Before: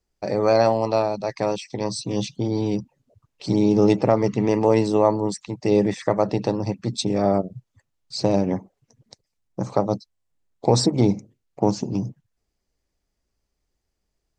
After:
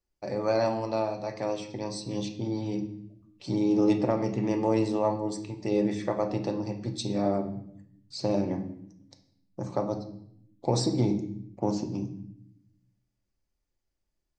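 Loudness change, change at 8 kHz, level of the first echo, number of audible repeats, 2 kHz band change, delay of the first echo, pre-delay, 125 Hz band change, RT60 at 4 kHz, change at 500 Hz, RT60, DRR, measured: -7.5 dB, -8.5 dB, no echo, no echo, -7.5 dB, no echo, 3 ms, -7.0 dB, 0.60 s, -8.0 dB, 0.70 s, 3.5 dB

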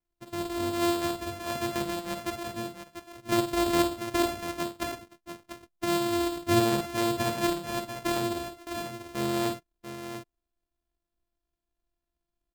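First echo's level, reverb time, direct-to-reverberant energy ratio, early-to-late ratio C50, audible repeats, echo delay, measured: -8.5 dB, no reverb, no reverb, no reverb, 2, 52 ms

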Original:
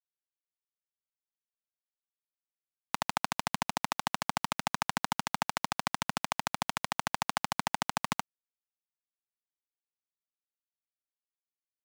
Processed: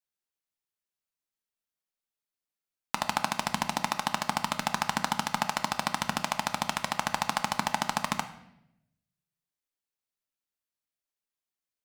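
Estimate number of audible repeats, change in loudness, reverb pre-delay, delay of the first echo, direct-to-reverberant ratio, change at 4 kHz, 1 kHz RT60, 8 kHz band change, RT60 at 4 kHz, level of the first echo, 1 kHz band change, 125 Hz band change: no echo, +3.0 dB, 3 ms, no echo, 8.0 dB, +3.0 dB, 0.75 s, +3.0 dB, 0.70 s, no echo, +3.5 dB, +2.5 dB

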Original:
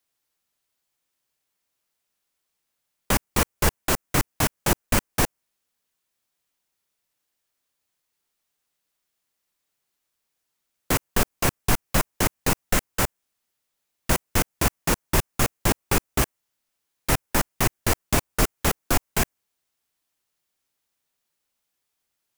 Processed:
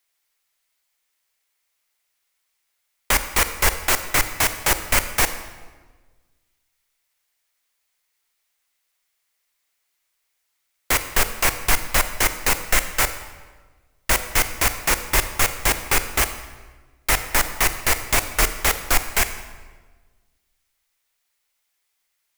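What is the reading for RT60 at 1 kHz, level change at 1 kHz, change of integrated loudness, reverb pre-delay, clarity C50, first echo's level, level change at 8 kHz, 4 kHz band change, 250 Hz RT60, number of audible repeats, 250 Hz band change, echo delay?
1.3 s, +3.0 dB, +4.0 dB, 30 ms, 11.0 dB, no echo, +5.5 dB, +5.5 dB, 1.6 s, no echo, -6.5 dB, no echo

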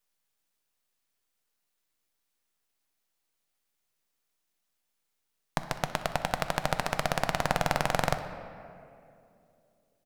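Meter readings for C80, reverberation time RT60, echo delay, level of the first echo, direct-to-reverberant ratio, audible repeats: 10.5 dB, 2.7 s, 62 ms, -18.5 dB, 7.5 dB, 1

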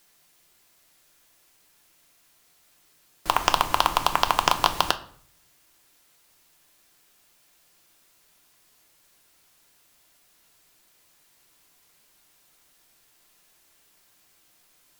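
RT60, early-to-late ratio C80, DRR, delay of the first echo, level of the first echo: 0.55 s, 19.5 dB, 7.5 dB, no echo, no echo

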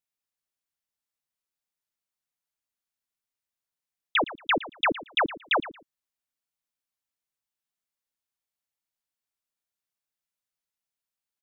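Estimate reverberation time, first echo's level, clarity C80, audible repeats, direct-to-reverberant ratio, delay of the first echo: no reverb, -16.0 dB, no reverb, 2, no reverb, 114 ms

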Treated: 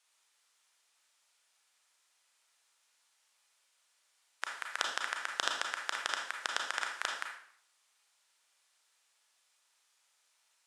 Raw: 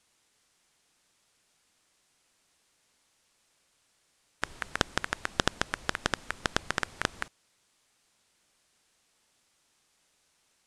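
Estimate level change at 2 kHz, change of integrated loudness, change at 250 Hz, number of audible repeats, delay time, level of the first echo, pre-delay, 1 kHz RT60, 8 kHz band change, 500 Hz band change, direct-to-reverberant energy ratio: -2.5 dB, -3.0 dB, -20.0 dB, no echo, no echo, no echo, 30 ms, 0.65 s, -2.5 dB, -10.0 dB, 1.0 dB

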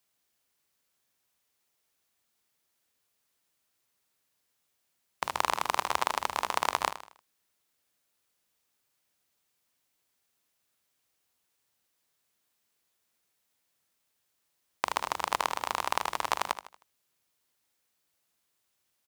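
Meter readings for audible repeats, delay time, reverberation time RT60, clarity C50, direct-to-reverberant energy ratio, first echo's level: 3, 78 ms, no reverb, no reverb, no reverb, -12.0 dB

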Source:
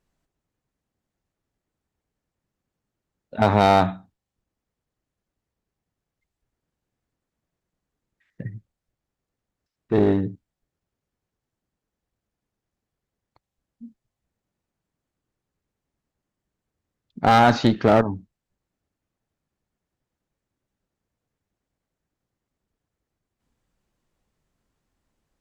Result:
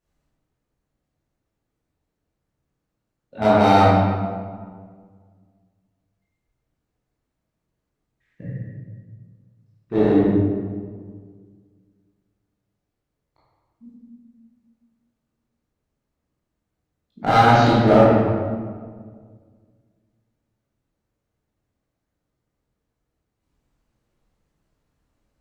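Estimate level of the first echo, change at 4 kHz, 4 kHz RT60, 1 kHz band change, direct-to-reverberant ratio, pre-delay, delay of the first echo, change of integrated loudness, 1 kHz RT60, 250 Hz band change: no echo, +1.0 dB, 1.0 s, +3.0 dB, -9.5 dB, 15 ms, no echo, +2.0 dB, 1.6 s, +4.5 dB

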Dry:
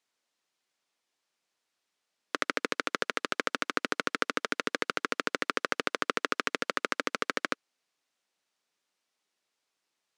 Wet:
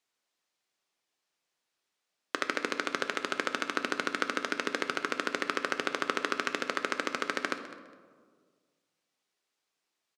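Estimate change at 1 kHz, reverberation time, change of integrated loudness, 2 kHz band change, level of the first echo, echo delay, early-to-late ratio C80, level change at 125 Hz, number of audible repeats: -1.0 dB, 1.7 s, -0.5 dB, -0.5 dB, -17.0 dB, 205 ms, 10.5 dB, -1.5 dB, 2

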